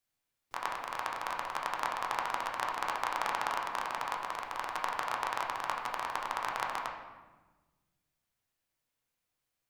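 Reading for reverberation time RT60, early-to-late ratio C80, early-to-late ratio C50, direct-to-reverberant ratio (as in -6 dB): 1.2 s, 6.0 dB, 4.0 dB, -1.0 dB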